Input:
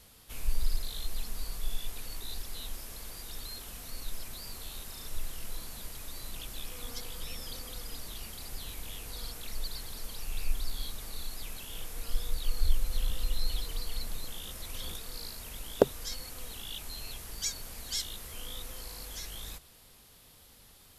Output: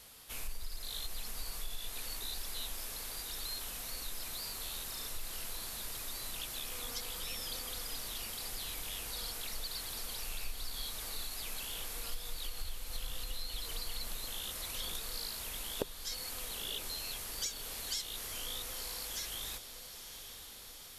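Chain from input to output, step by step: low shelf 350 Hz -9.5 dB; compressor 6:1, threshold -38 dBFS, peak gain reduction 18.5 dB; on a send: diffused feedback echo 0.943 s, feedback 65%, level -10.5 dB; on the sum: gain +3 dB

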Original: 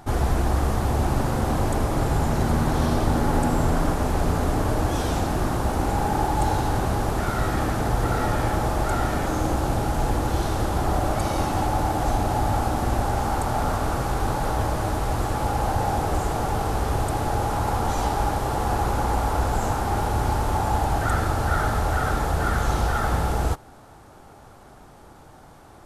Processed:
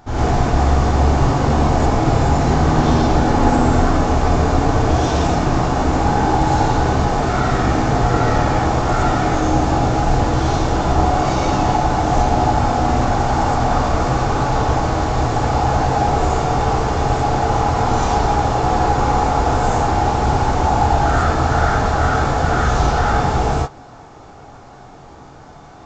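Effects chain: non-linear reverb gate 0.14 s rising, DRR -8 dB; downsampling 16000 Hz; gain -1 dB

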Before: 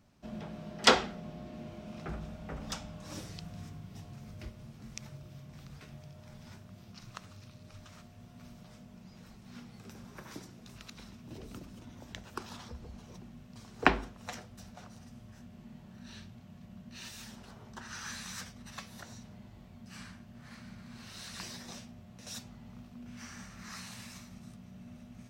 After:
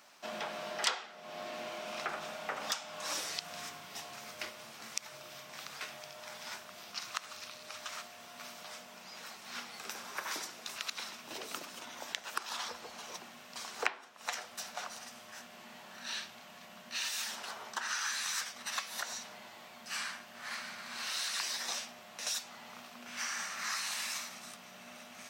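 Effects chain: HPF 840 Hz 12 dB/oct; compressor 5:1, threshold -48 dBFS, peak gain reduction 26.5 dB; gain +14.5 dB

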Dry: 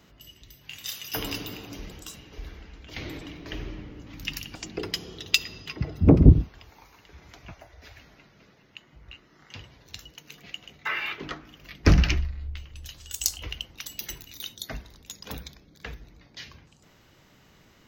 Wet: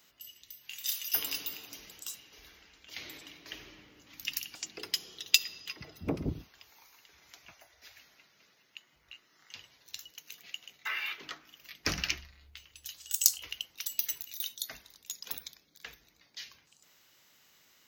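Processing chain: tilt +4 dB/oct; gain -9.5 dB

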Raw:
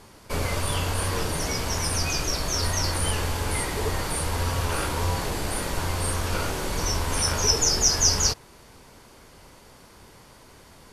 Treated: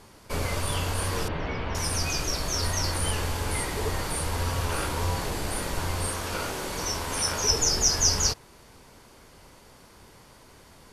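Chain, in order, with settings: 1.28–1.75 LPF 3100 Hz 24 dB/oct; 6.07–7.49 low shelf 120 Hz -10 dB; gain -2 dB

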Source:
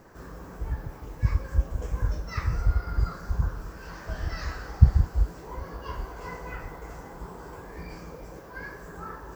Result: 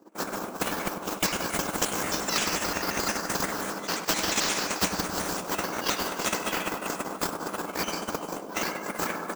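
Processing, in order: trilling pitch shifter +4.5 st, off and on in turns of 88 ms; expander -35 dBFS; elliptic high-pass 190 Hz, stop band 40 dB; bell 1900 Hz -12 dB 0.67 oct; reverse; upward compressor, threshold -60 dBFS; reverse; transient shaper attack +11 dB, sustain -7 dB; bell 300 Hz +11.5 dB 0.27 oct; on a send: feedback echo 99 ms, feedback 58%, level -16 dB; on the sum: spectral compressor 4:1

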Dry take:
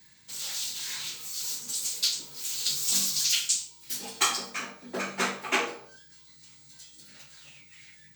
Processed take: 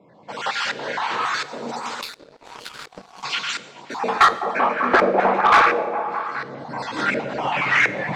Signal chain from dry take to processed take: random spectral dropouts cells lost 31%; recorder AGC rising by 15 dB/s; HPF 110 Hz; split-band echo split 2100 Hz, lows 0.206 s, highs 0.141 s, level -9 dB; LFO low-pass saw up 1.4 Hz 480–1600 Hz; overdrive pedal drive 18 dB, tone 6400 Hz, clips at -9 dBFS; in parallel at +1.5 dB: compressor, threshold -35 dBFS, peak gain reduction 18.5 dB; on the sum: notches 50/100/150 Hz; reverb, pre-delay 3 ms, DRR 14 dB; 2.01–3.23 power-law curve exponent 2; gain +3.5 dB

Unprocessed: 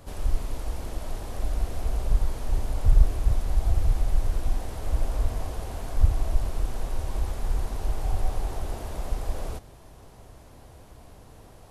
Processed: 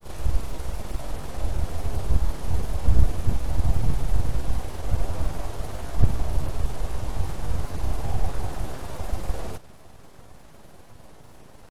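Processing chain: full-wave rectifier; grains 0.1 s, grains 20/s, spray 21 ms, pitch spread up and down by 0 st; gain +4 dB

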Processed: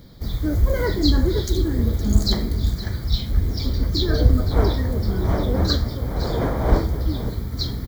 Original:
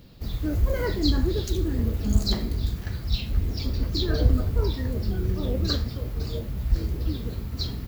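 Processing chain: 4.5–7.03 wind noise 570 Hz -32 dBFS; Butterworth band-stop 2700 Hz, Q 3.5; echo 0.515 s -14.5 dB; gain +4.5 dB

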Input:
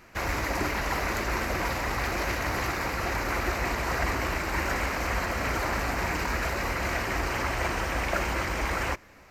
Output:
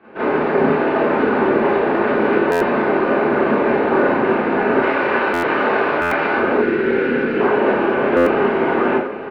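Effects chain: small resonant body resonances 510/1700 Hz, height 11 dB, ringing for 25 ms; mistuned SSB -140 Hz 330–3000 Hz; 4.79–6.35 tilt shelf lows -6 dB, about 800 Hz; Schroeder reverb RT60 0.4 s, combs from 26 ms, DRR -9 dB; 6.61–7.4 spectral delete 540–1300 Hz; bell 1900 Hz -13 dB 0.93 oct; on a send: echo 0.86 s -12 dB; on the sum: stuck buffer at 2.51/5.33/6.01/8.16, samples 512; gain +4 dB

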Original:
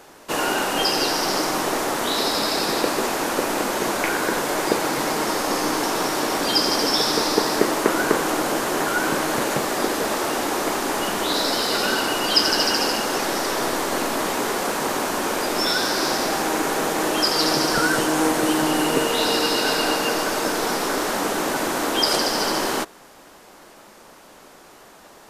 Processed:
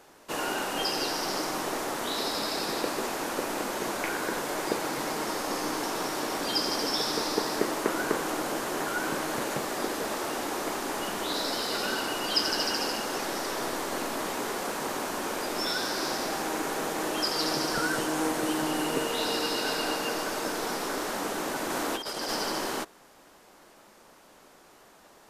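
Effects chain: 21.7–22.35 negative-ratio compressor -23 dBFS, ratio -0.5; gain -8.5 dB

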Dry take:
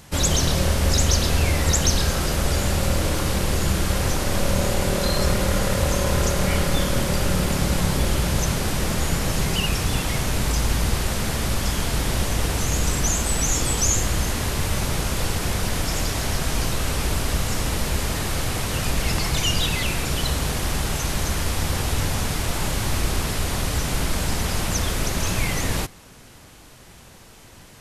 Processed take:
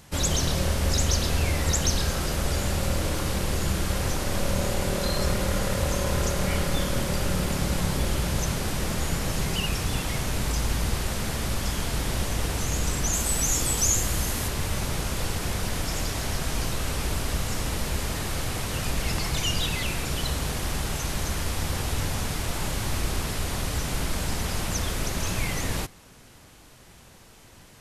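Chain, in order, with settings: 13.13–14.48 high shelf 8700 Hz +9 dB; gain -4.5 dB

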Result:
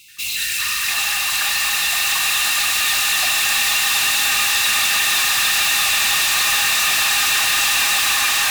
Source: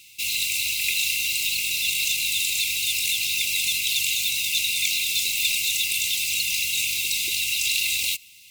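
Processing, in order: swelling echo 0.156 s, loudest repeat 8, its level -8 dB; echoes that change speed 84 ms, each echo -7 st, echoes 3; soft clip -14.5 dBFS, distortion -14 dB; gain +2.5 dB

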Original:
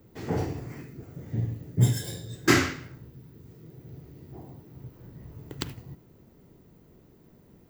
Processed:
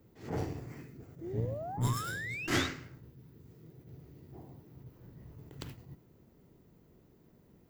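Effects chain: painted sound rise, 1.21–2.67, 320–3900 Hz -34 dBFS; tube stage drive 18 dB, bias 0.6; attack slew limiter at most 150 dB/s; gain -3 dB

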